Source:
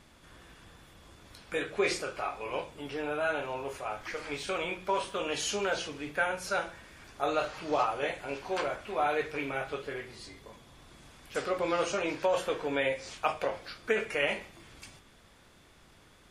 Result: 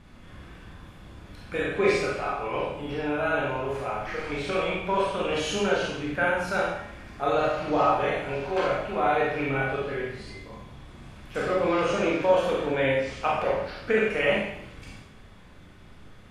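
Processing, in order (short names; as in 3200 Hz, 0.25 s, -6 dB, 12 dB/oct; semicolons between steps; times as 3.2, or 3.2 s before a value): tone controls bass +8 dB, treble -9 dB; Schroeder reverb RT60 0.74 s, combs from 30 ms, DRR -3 dB; gain +1 dB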